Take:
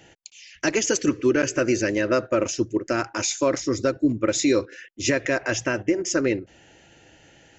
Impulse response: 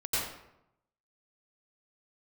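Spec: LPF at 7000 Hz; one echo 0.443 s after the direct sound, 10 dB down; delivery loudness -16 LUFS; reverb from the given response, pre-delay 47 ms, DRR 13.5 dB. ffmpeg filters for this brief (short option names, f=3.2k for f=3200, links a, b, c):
-filter_complex "[0:a]lowpass=7k,aecho=1:1:443:0.316,asplit=2[a][b];[1:a]atrim=start_sample=2205,adelay=47[c];[b][c]afir=irnorm=-1:irlink=0,volume=-21.5dB[d];[a][d]amix=inputs=2:normalize=0,volume=7.5dB"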